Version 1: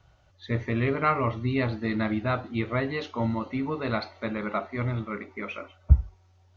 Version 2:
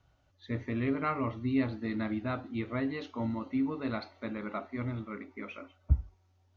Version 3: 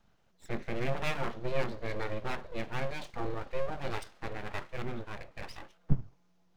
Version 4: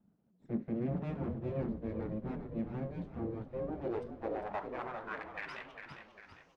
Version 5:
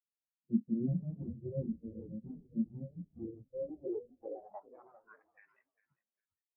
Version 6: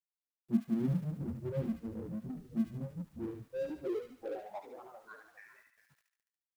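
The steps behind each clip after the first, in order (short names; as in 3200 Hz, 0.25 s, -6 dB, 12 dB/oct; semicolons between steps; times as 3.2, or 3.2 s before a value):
bell 270 Hz +9.5 dB 0.37 oct; gain -8.5 dB
full-wave rectifier; gain +1.5 dB
band-pass sweep 220 Hz -> 6000 Hz, 3.45–6.48; frequency-shifting echo 0.401 s, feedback 49%, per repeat -52 Hz, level -7 dB; gain +7.5 dB
spectral expander 2.5:1; gain +4.5 dB
G.711 law mismatch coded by mu; thin delay 73 ms, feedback 49%, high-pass 1600 Hz, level -3 dB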